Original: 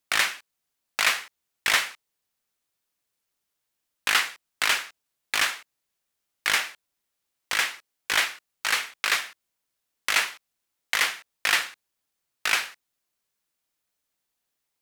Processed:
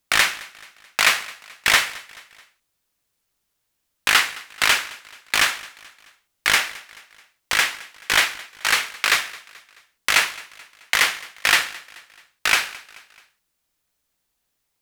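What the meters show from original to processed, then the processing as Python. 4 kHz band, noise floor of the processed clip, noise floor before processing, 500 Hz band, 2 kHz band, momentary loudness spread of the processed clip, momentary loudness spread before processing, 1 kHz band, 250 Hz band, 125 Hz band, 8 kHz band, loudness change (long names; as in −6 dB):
+5.5 dB, −75 dBFS, −81 dBFS, +6.0 dB, +5.5 dB, 16 LU, 12 LU, +5.5 dB, +7.0 dB, can't be measured, +5.5 dB, +5.5 dB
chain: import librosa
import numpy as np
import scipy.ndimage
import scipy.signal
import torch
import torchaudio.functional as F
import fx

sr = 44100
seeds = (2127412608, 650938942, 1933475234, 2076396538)

y = fx.low_shelf(x, sr, hz=120.0, db=9.5)
y = fx.echo_feedback(y, sr, ms=216, feedback_pct=48, wet_db=-21.0)
y = y * librosa.db_to_amplitude(5.5)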